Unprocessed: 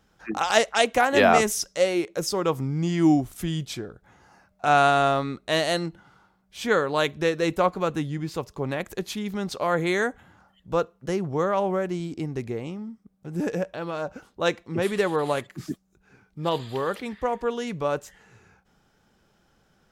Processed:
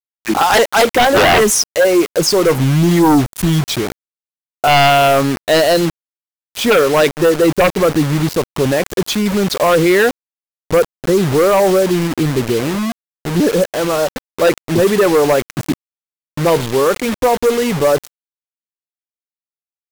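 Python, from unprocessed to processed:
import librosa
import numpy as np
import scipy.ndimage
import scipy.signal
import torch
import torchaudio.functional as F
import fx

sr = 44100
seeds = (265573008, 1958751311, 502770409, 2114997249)

y = fx.envelope_sharpen(x, sr, power=1.5)
y = fx.quant_dither(y, sr, seeds[0], bits=6, dither='none')
y = fx.fold_sine(y, sr, drive_db=11, ceiling_db=-6.5)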